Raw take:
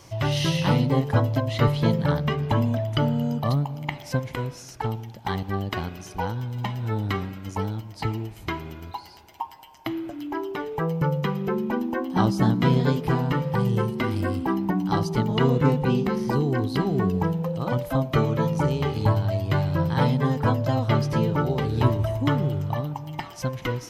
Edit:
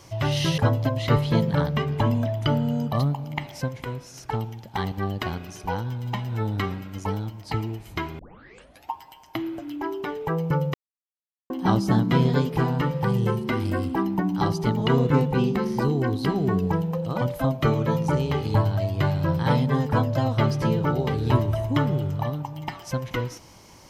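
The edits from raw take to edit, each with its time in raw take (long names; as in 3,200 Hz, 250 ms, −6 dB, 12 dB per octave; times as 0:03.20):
0:00.58–0:01.09: remove
0:04.11–0:04.65: clip gain −3 dB
0:08.70: tape start 0.73 s
0:11.25–0:12.01: silence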